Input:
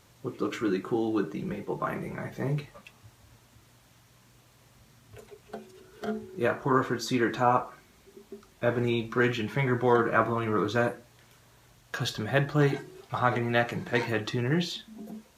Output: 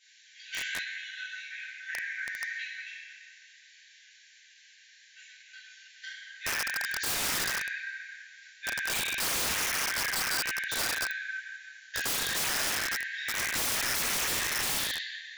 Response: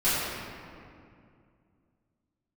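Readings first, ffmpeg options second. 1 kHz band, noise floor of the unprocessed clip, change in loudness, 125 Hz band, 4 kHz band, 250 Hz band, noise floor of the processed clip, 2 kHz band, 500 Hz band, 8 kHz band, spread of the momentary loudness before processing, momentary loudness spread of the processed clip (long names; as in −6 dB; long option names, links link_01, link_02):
−9.0 dB, −60 dBFS, −1.5 dB, −20.0 dB, +7.5 dB, −19.0 dB, −58 dBFS, +3.0 dB, −17.0 dB, +16.5 dB, 14 LU, 17 LU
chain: -filter_complex "[1:a]atrim=start_sample=2205,asetrate=37485,aresample=44100[link_01];[0:a][link_01]afir=irnorm=-1:irlink=0,afftfilt=real='re*between(b*sr/4096,1500,7400)':imag='im*between(b*sr/4096,1500,7400)':win_size=4096:overlap=0.75,aeval=exprs='(mod(9.44*val(0)+1,2)-1)/9.44':channel_layout=same,volume=-5.5dB"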